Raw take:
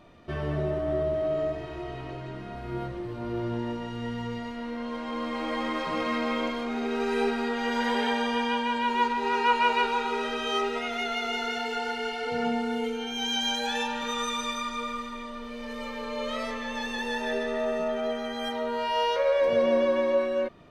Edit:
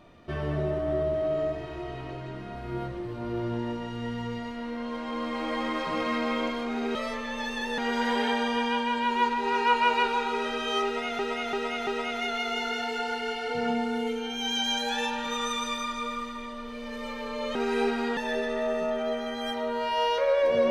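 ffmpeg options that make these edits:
-filter_complex "[0:a]asplit=8[a][b][c][d][e][f][g][h];[a]atrim=end=6.952[i];[b]atrim=start=16.318:end=17.152[j];[c]atrim=start=7.568:end=10.982[k];[d]atrim=start=10.638:end=10.982[l];[e]atrim=start=10.638:end=10.982[m];[f]atrim=start=10.638:end=16.322[n];[g]atrim=start=6.948:end=7.572[o];[h]atrim=start=17.148[p];[i][j]acrossfade=d=0.004:c1=hsin:c2=hsin[q];[q][k]acrossfade=d=0.004:c1=hsin:c2=hsin[r];[r][l]acrossfade=d=0.004:c1=hsin:c2=hsin[s];[s][m]acrossfade=d=0.004:c1=hsin:c2=hsin[t];[t][n]acrossfade=d=0.004:c1=hsin:c2=hsin[u];[u][o]acrossfade=d=0.004:c1=hsin:c2=hsin[v];[v][p]acrossfade=d=0.004:c1=hsin:c2=hsin"

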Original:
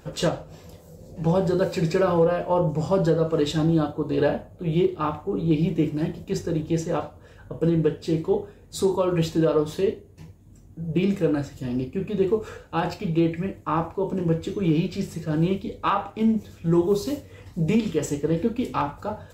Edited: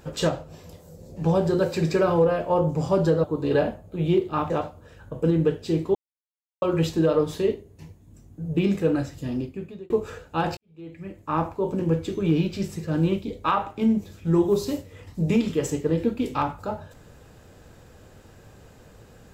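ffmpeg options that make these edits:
-filter_complex "[0:a]asplit=7[a][b][c][d][e][f][g];[a]atrim=end=3.242[h];[b]atrim=start=3.908:end=5.172[i];[c]atrim=start=6.888:end=8.34,asetpts=PTS-STARTPTS,afade=t=out:st=1.448:d=0.004:c=hsin[j];[d]atrim=start=8.34:end=9.01,asetpts=PTS-STARTPTS,volume=0[k];[e]atrim=start=9.01:end=12.29,asetpts=PTS-STARTPTS,afade=t=in:d=0.004:c=hsin,afade=t=out:st=2.65:d=0.63[l];[f]atrim=start=12.29:end=12.96,asetpts=PTS-STARTPTS,afade=t=in:d=0.004:c=hsin,afade=t=out:st=0.666:d=0.004:c=hsin[m];[g]atrim=start=12.96,asetpts=PTS-STARTPTS,afade=t=in:d=0.82:c=qua[n];[h][i]acrossfade=d=0.004:c1=hsin:c2=hsin[o];[j][k][l][m][n]concat=n=5:v=0:a=1[p];[o][p]acrossfade=d=0.004:c1=hsin:c2=hsin"

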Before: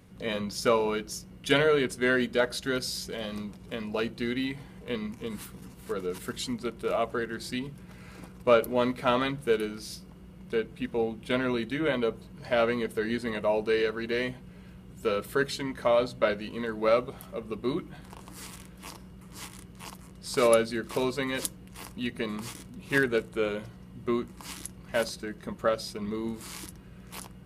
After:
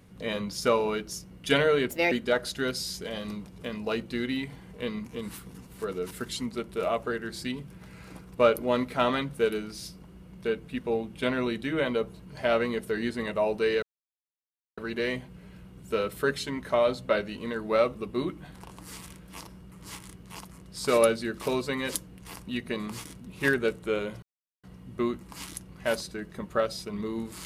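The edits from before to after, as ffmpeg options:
-filter_complex "[0:a]asplit=6[a][b][c][d][e][f];[a]atrim=end=1.904[g];[b]atrim=start=1.9:end=2.19,asetpts=PTS-STARTPTS,asetrate=59535,aresample=44100,atrim=end_sample=9473,asetpts=PTS-STARTPTS[h];[c]atrim=start=2.186:end=13.9,asetpts=PTS-STARTPTS,afade=t=out:st=11.71:d=0.004:c=hsin,apad=pad_dur=0.95[i];[d]atrim=start=13.9:end=17.072,asetpts=PTS-STARTPTS,afade=t=in:d=0.004:c=hsin[j];[e]atrim=start=17.438:end=23.72,asetpts=PTS-STARTPTS,afade=t=out:st=6.278:d=0.004:c=hsin,apad=pad_dur=0.41[k];[f]atrim=start=23.72,asetpts=PTS-STARTPTS,afade=t=in:d=0.004:c=hsin[l];[g][h]acrossfade=d=0.004:c1=hsin:c2=hsin[m];[i][j]concat=n=2:v=0:a=1[n];[m][n]acrossfade=d=0.004:c1=hsin:c2=hsin[o];[k][l]concat=n=2:v=0:a=1[p];[o][p]acrossfade=d=0.004:c1=hsin:c2=hsin"

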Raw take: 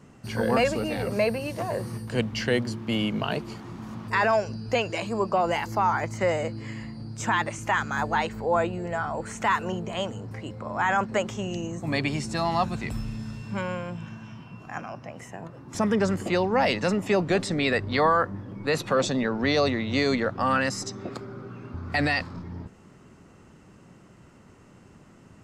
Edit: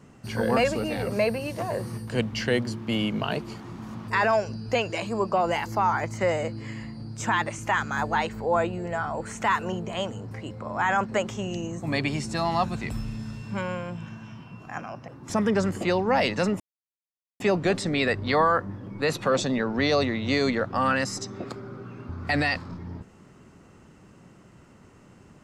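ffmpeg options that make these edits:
-filter_complex "[0:a]asplit=3[a][b][c];[a]atrim=end=15.082[d];[b]atrim=start=15.528:end=17.05,asetpts=PTS-STARTPTS,afade=t=out:st=1.518:d=0.004:c=hsin,apad=pad_dur=0.8[e];[c]atrim=start=17.05,asetpts=PTS-STARTPTS,afade=t=in:d=0.004:c=hsin[f];[e][f]concat=n=2:v=0:a=1[g];[d][g]acrossfade=d=0.004:c1=hsin:c2=hsin"

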